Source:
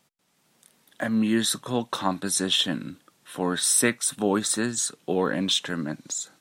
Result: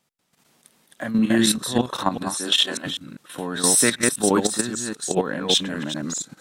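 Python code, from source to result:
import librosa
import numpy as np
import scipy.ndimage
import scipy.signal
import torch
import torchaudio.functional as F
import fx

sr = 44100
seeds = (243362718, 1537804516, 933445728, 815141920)

y = fx.reverse_delay(x, sr, ms=198, wet_db=-2)
y = fx.highpass(y, sr, hz=fx.line((2.36, 220.0), (2.85, 490.0)), slope=12, at=(2.36, 2.85), fade=0.02)
y = fx.level_steps(y, sr, step_db=11)
y = y * 10.0 ** (5.0 / 20.0)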